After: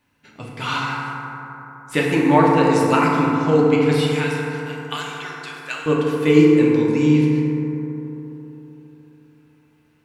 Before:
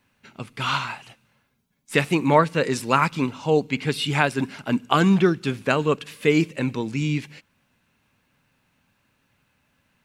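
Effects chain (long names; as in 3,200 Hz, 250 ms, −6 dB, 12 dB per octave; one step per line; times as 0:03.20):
0:04.03–0:05.86: Bessel high-pass filter 2,100 Hz, order 2
feedback delay network reverb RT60 3.6 s, high-frequency decay 0.3×, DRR −4 dB
level −2.5 dB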